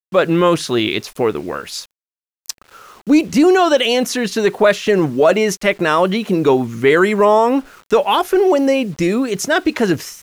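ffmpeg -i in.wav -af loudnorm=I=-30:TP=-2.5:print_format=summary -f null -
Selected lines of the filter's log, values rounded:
Input Integrated:    -15.5 LUFS
Input True Peak:      -2.5 dBTP
Input LRA:             2.9 LU
Input Threshold:     -25.9 LUFS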